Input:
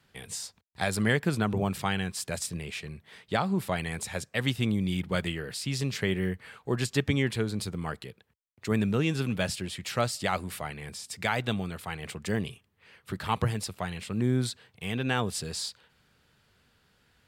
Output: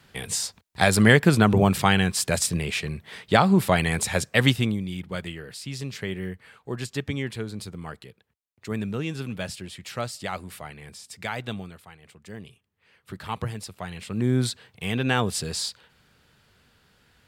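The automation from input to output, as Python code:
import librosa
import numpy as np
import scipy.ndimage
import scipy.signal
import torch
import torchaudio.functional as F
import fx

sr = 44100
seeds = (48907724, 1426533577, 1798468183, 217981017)

y = fx.gain(x, sr, db=fx.line((4.46, 9.5), (4.86, -3.0), (11.58, -3.0), (12.0, -14.0), (13.13, -3.0), (13.71, -3.0), (14.44, 5.0)))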